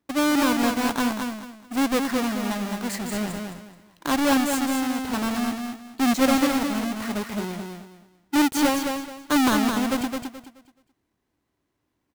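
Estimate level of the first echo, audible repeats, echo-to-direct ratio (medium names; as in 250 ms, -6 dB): -5.0 dB, 3, -4.5 dB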